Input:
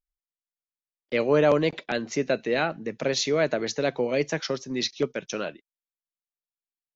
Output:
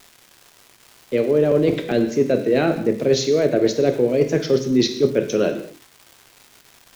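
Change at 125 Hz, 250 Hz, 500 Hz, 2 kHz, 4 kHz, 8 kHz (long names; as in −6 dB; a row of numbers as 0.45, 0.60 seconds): +8.5 dB, +9.5 dB, +7.5 dB, −1.0 dB, +2.5 dB, can't be measured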